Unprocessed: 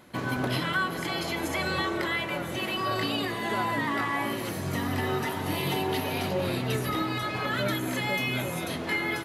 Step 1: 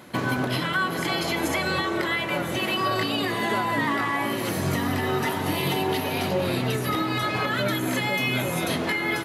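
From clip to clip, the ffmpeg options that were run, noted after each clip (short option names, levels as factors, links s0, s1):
-af "highpass=84,alimiter=limit=0.075:level=0:latency=1:release=395,volume=2.37"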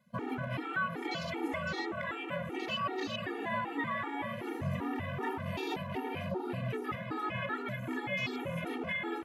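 -af "afwtdn=0.0282,afftfilt=real='re*gt(sin(2*PI*2.6*pts/sr)*(1-2*mod(floor(b*sr/1024/240),2)),0)':imag='im*gt(sin(2*PI*2.6*pts/sr)*(1-2*mod(floor(b*sr/1024/240),2)),0)':win_size=1024:overlap=0.75,volume=0.447"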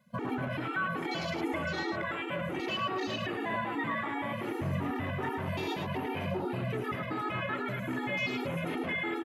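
-filter_complex "[0:a]asplit=2[s0][s1];[s1]alimiter=level_in=2.37:limit=0.0631:level=0:latency=1,volume=0.422,volume=1[s2];[s0][s2]amix=inputs=2:normalize=0,aecho=1:1:107:0.531,volume=0.708"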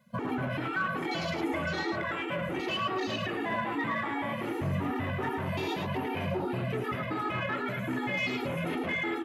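-filter_complex "[0:a]flanger=delay=7.6:depth=7.9:regen=-68:speed=1:shape=triangular,asplit=2[s0][s1];[s1]asoftclip=type=tanh:threshold=0.0158,volume=0.376[s2];[s0][s2]amix=inputs=2:normalize=0,volume=1.58"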